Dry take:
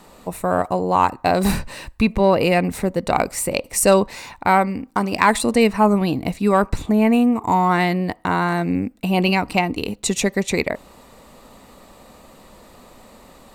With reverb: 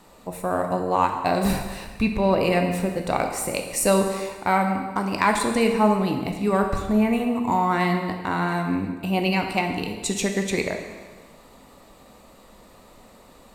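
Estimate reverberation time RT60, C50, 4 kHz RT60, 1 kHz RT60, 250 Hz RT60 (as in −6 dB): 1.4 s, 6.0 dB, 1.3 s, 1.4 s, 1.5 s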